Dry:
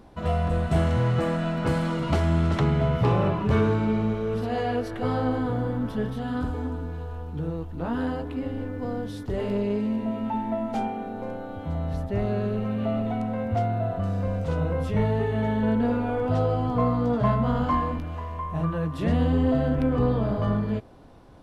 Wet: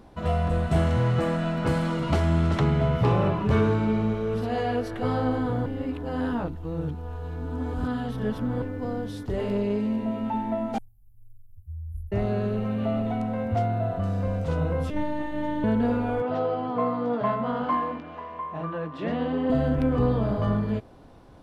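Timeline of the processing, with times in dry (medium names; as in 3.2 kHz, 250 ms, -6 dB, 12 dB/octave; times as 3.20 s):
5.66–8.62 s: reverse
10.78–12.12 s: inverse Chebyshev band-stop 240–4400 Hz, stop band 60 dB
14.90–15.64 s: robot voice 299 Hz
16.22–19.50 s: band-pass 260–3500 Hz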